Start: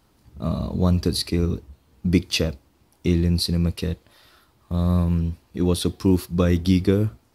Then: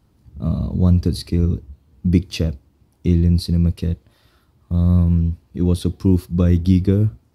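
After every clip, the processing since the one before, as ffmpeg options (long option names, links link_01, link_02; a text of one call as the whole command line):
ffmpeg -i in.wav -af "equalizer=frequency=91:width=0.31:gain=12.5,volume=-6dB" out.wav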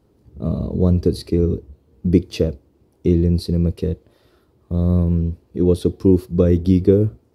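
ffmpeg -i in.wav -af "equalizer=frequency=430:width=1.2:gain=13.5,volume=-3.5dB" out.wav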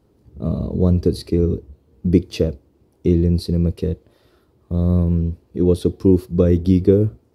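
ffmpeg -i in.wav -af anull out.wav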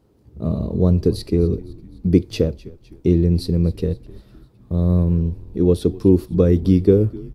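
ffmpeg -i in.wav -filter_complex "[0:a]asplit=5[link_01][link_02][link_03][link_04][link_05];[link_02]adelay=255,afreqshift=-71,volume=-20dB[link_06];[link_03]adelay=510,afreqshift=-142,volume=-25.5dB[link_07];[link_04]adelay=765,afreqshift=-213,volume=-31dB[link_08];[link_05]adelay=1020,afreqshift=-284,volume=-36.5dB[link_09];[link_01][link_06][link_07][link_08][link_09]amix=inputs=5:normalize=0" out.wav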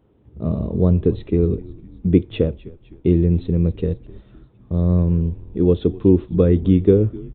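ffmpeg -i in.wav -af "aresample=8000,aresample=44100" out.wav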